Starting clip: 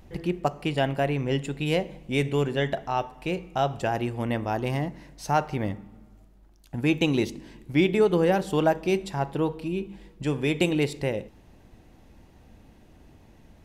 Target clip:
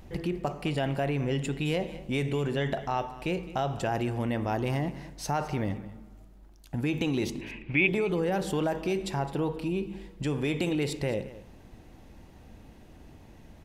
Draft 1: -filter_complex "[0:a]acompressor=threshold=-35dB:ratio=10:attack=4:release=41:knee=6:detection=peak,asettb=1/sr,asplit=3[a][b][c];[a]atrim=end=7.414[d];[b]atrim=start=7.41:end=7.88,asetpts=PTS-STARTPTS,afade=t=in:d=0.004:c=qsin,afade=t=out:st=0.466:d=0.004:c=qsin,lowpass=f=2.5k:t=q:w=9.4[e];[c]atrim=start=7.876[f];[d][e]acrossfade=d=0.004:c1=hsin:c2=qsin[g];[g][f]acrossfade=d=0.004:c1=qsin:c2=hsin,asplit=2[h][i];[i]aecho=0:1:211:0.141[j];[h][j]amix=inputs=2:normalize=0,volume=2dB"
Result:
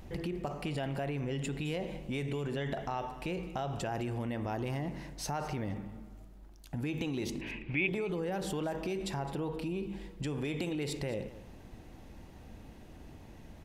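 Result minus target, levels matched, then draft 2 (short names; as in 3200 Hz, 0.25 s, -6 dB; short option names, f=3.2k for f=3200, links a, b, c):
compressor: peak gain reduction +7 dB
-filter_complex "[0:a]acompressor=threshold=-27dB:ratio=10:attack=4:release=41:knee=6:detection=peak,asettb=1/sr,asplit=3[a][b][c];[a]atrim=end=7.414[d];[b]atrim=start=7.41:end=7.88,asetpts=PTS-STARTPTS,afade=t=in:d=0.004:c=qsin,afade=t=out:st=0.466:d=0.004:c=qsin,lowpass=f=2.5k:t=q:w=9.4[e];[c]atrim=start=7.876[f];[d][e]acrossfade=d=0.004:c1=hsin:c2=qsin[g];[g][f]acrossfade=d=0.004:c1=qsin:c2=hsin,asplit=2[h][i];[i]aecho=0:1:211:0.141[j];[h][j]amix=inputs=2:normalize=0,volume=2dB"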